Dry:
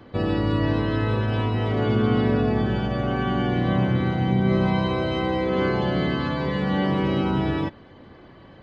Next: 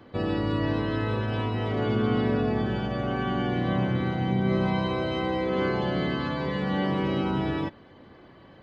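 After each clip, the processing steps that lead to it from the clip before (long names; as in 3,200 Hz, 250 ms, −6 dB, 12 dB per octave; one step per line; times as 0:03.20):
low-shelf EQ 100 Hz −5.5 dB
level −3 dB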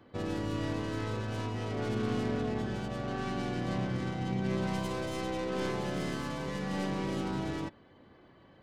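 stylus tracing distortion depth 0.21 ms
level −7.5 dB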